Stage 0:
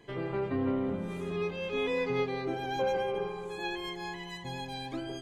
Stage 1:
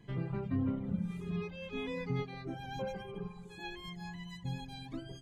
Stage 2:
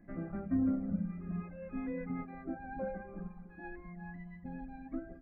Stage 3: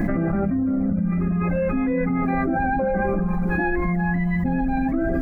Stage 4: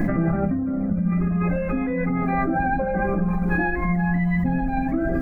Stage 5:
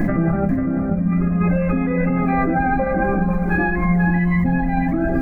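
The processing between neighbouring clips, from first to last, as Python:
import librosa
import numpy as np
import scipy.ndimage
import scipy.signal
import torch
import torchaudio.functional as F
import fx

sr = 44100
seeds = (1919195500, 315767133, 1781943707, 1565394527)

y1 = fx.dereverb_blind(x, sr, rt60_s=1.5)
y1 = fx.low_shelf_res(y1, sr, hz=270.0, db=10.5, q=1.5)
y1 = y1 * 10.0 ** (-6.5 / 20.0)
y2 = scipy.ndimage.gaussian_filter1d(y1, 4.4, mode='constant')
y2 = fx.fixed_phaser(y2, sr, hz=640.0, stages=8)
y2 = y2 * 10.0 ** (4.0 / 20.0)
y3 = fx.env_flatten(y2, sr, amount_pct=100)
y3 = y3 * 10.0 ** (6.5 / 20.0)
y4 = fx.room_shoebox(y3, sr, seeds[0], volume_m3=170.0, walls='furnished', distance_m=0.43)
y5 = y4 + 10.0 ** (-7.5 / 20.0) * np.pad(y4, (int(492 * sr / 1000.0), 0))[:len(y4)]
y5 = y5 * 10.0 ** (3.0 / 20.0)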